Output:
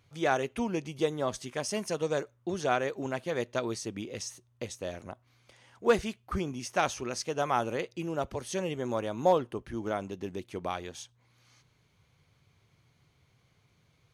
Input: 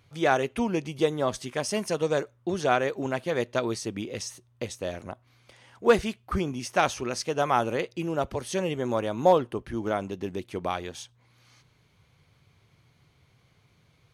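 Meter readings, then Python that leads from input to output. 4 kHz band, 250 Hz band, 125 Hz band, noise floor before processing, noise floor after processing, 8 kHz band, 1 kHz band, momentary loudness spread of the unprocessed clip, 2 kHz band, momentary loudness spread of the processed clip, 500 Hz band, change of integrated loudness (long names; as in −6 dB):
−4.0 dB, −4.5 dB, −4.5 dB, −64 dBFS, −68 dBFS, −2.5 dB, −4.5 dB, 12 LU, −4.5 dB, 11 LU, −4.5 dB, −4.5 dB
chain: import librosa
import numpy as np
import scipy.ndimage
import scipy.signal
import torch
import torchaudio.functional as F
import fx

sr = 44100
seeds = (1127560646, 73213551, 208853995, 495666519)

y = fx.peak_eq(x, sr, hz=6500.0, db=3.0, octaves=0.44)
y = F.gain(torch.from_numpy(y), -4.5).numpy()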